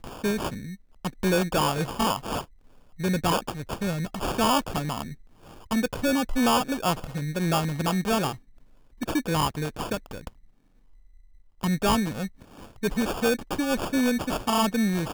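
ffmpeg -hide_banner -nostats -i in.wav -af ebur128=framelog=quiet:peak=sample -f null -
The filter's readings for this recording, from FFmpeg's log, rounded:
Integrated loudness:
  I:         -26.6 LUFS
  Threshold: -37.5 LUFS
Loudness range:
  LRA:         4.6 LU
  Threshold: -47.8 LUFS
  LRA low:   -30.8 LUFS
  LRA high:  -26.2 LUFS
Sample peak:
  Peak:      -16.7 dBFS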